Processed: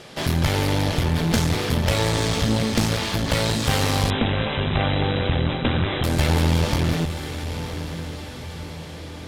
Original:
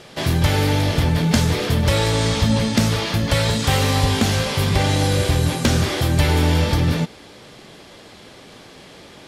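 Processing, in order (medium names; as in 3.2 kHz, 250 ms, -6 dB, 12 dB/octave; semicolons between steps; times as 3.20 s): echo that smears into a reverb 968 ms, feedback 45%, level -11 dB; one-sided clip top -29 dBFS; 4.10–6.04 s: brick-wall FIR low-pass 4 kHz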